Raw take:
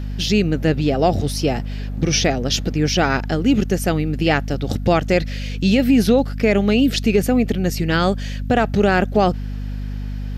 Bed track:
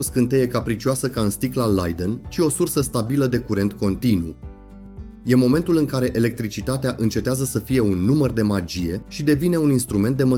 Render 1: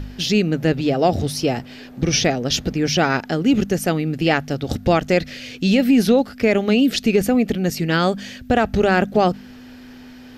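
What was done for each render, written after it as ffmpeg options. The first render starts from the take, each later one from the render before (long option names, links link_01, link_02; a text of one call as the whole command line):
ffmpeg -i in.wav -af "bandreject=frequency=50:width_type=h:width=4,bandreject=frequency=100:width_type=h:width=4,bandreject=frequency=150:width_type=h:width=4,bandreject=frequency=200:width_type=h:width=4" out.wav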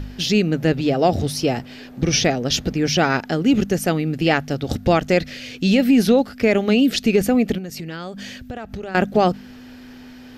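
ffmpeg -i in.wav -filter_complex "[0:a]asettb=1/sr,asplit=3[link_01][link_02][link_03];[link_01]atrim=end=7.584[link_04];[link_02]atrim=start=7.58:end=8.95,asetpts=PTS-STARTPTS,afade=type=in:duration=0.004:curve=qsin,afade=type=out:start_time=1.366:duration=0.004:curve=qsin,acompressor=threshold=-28dB:ratio=6:attack=3.2:release=140:knee=1:detection=peak[link_05];[link_03]atrim=start=8.946[link_06];[link_04][link_05]acrossfade=duration=0.004:curve1=hsin:curve2=qsin[link_07];[link_07][link_06]acrossfade=duration=0.004:curve1=qsin:curve2=hsin" out.wav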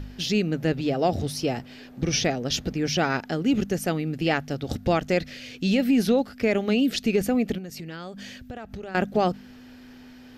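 ffmpeg -i in.wav -af "volume=-6dB" out.wav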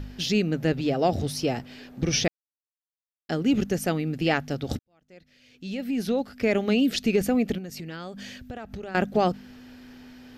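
ffmpeg -i in.wav -filter_complex "[0:a]asplit=4[link_01][link_02][link_03][link_04];[link_01]atrim=end=2.28,asetpts=PTS-STARTPTS,afade=type=out:start_time=2.276:duration=0.004:curve=hsin[link_05];[link_02]atrim=start=2.28:end=3.29,asetpts=PTS-STARTPTS,volume=0[link_06];[link_03]atrim=start=3.29:end=4.79,asetpts=PTS-STARTPTS,afade=type=in:duration=0.004:curve=hsin,afade=type=out:start_time=1.496:duration=0.004:curve=hsin[link_07];[link_04]atrim=start=4.79,asetpts=PTS-STARTPTS,afade=type=in:duration=1.75:curve=qua[link_08];[link_05][link_06][link_07][link_08]concat=n=4:v=0:a=1" out.wav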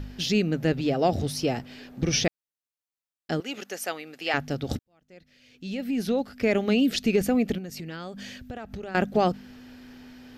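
ffmpeg -i in.wav -filter_complex "[0:a]asettb=1/sr,asplit=3[link_01][link_02][link_03];[link_01]atrim=end=3.404[link_04];[link_02]atrim=start=3.4:end=4.34,asetpts=PTS-STARTPTS,afade=type=in:duration=0.004:curve=qsin,afade=type=out:start_time=0.936:duration=0.004:curve=qsin,highpass=690[link_05];[link_03]atrim=start=4.336[link_06];[link_04][link_05]acrossfade=duration=0.004:curve1=hsin:curve2=qsin[link_07];[link_07][link_06]acrossfade=duration=0.004:curve1=qsin:curve2=hsin" out.wav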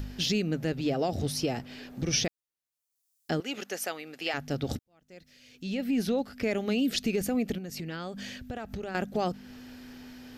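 ffmpeg -i in.wav -filter_complex "[0:a]acrossover=split=5100[link_01][link_02];[link_01]alimiter=limit=-19.5dB:level=0:latency=1:release=265[link_03];[link_02]acompressor=mode=upward:threshold=-56dB:ratio=2.5[link_04];[link_03][link_04]amix=inputs=2:normalize=0" out.wav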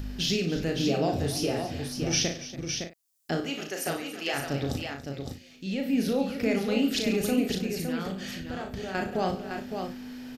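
ffmpeg -i in.wav -filter_complex "[0:a]asplit=2[link_01][link_02];[link_02]adelay=36,volume=-5.5dB[link_03];[link_01][link_03]amix=inputs=2:normalize=0,aecho=1:1:59|140|284|561|620:0.335|0.141|0.178|0.501|0.119" out.wav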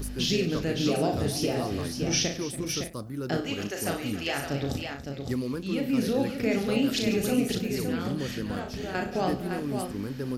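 ffmpeg -i in.wav -i bed.wav -filter_complex "[1:a]volume=-15dB[link_01];[0:a][link_01]amix=inputs=2:normalize=0" out.wav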